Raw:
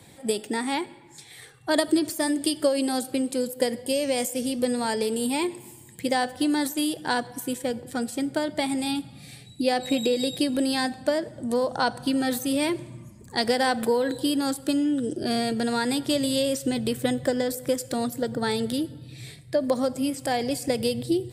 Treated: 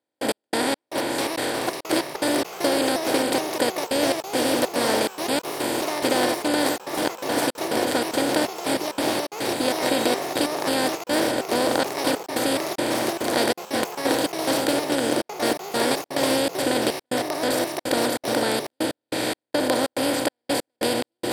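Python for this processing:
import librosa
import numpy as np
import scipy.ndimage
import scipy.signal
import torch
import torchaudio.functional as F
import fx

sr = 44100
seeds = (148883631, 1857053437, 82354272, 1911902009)

y = fx.bin_compress(x, sr, power=0.2)
y = fx.step_gate(y, sr, bpm=142, pattern='..x..xx..xxx.xxx', floor_db=-60.0, edge_ms=4.5)
y = fx.echo_pitch(y, sr, ms=737, semitones=3, count=3, db_per_echo=-6.0)
y = y * 10.0 ** (-7.0 / 20.0)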